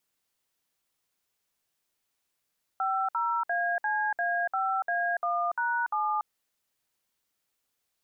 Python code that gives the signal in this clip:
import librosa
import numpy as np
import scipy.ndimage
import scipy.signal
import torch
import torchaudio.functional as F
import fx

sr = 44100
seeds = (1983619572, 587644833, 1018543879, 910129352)

y = fx.dtmf(sr, digits='50ACA5A1#7', tone_ms=287, gap_ms=60, level_db=-28.0)